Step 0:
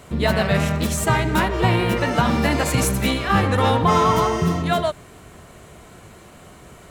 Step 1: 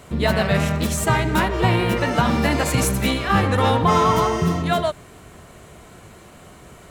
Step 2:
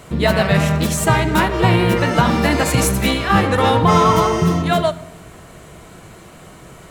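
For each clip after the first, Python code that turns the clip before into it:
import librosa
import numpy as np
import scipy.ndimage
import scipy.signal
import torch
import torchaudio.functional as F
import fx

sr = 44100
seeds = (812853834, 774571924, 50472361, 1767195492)

y1 = x
y2 = fx.room_shoebox(y1, sr, seeds[0], volume_m3=2800.0, walls='furnished', distance_m=0.65)
y2 = y2 * librosa.db_to_amplitude(3.5)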